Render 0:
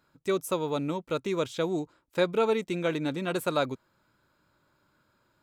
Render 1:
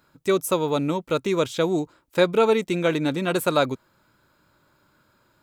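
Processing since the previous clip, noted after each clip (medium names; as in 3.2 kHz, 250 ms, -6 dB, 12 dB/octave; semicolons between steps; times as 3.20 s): treble shelf 11 kHz +5 dB; trim +6.5 dB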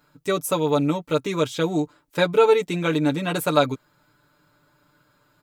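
comb 6.8 ms, depth 78%; trim -1.5 dB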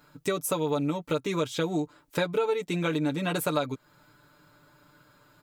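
compression 4:1, threshold -29 dBFS, peak gain reduction 15 dB; trim +3 dB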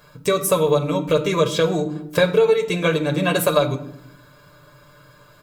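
reverberation RT60 0.75 s, pre-delay 15 ms, DRR 10 dB; trim +7 dB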